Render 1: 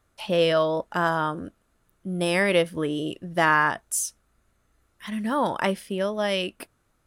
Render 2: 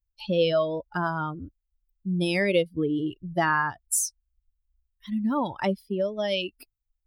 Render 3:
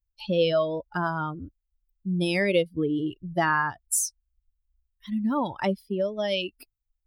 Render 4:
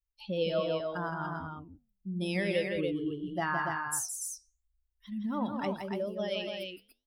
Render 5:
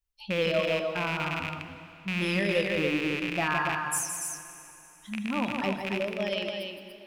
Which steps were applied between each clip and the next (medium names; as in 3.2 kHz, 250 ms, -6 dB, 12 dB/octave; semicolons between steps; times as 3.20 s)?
expander on every frequency bin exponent 2; dynamic bell 1.4 kHz, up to -5 dB, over -37 dBFS, Q 0.73; compression 1.5:1, threshold -37 dBFS, peak gain reduction 6.5 dB; trim +8 dB
no audible change
flange 0.85 Hz, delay 4.7 ms, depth 9.3 ms, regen -85%; on a send: loudspeakers at several distances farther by 57 m -6 dB, 99 m -5 dB; on the sum: trim -4 dB
rattle on loud lows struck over -42 dBFS, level -24 dBFS; plate-style reverb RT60 3.2 s, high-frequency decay 0.95×, pre-delay 0 ms, DRR 9.5 dB; trim +3 dB